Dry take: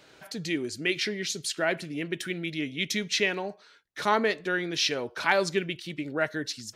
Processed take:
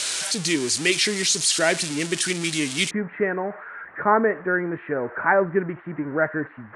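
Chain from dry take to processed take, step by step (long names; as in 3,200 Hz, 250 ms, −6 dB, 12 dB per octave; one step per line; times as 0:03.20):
spike at every zero crossing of −19.5 dBFS
Butterworth low-pass 9,700 Hz 48 dB per octave, from 0:02.89 1,800 Hz
level +6 dB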